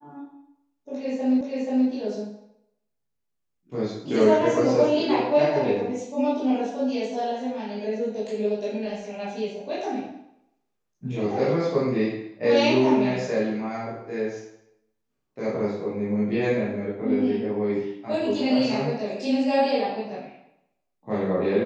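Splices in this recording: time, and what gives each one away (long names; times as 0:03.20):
0:01.41: the same again, the last 0.48 s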